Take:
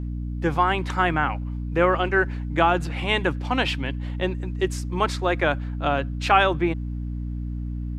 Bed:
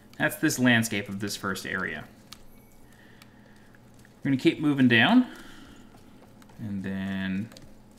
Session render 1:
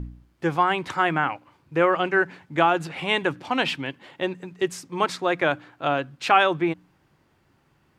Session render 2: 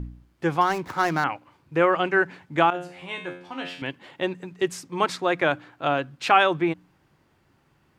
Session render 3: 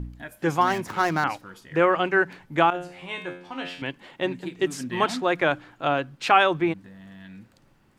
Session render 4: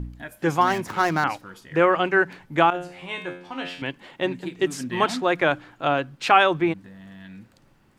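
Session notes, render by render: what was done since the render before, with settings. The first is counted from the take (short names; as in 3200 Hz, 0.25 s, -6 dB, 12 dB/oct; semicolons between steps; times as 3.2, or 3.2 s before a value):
de-hum 60 Hz, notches 5
0.61–1.24 median filter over 15 samples; 2.7–3.82 resonator 89 Hz, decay 0.51 s, mix 90%
add bed -14 dB
gain +1.5 dB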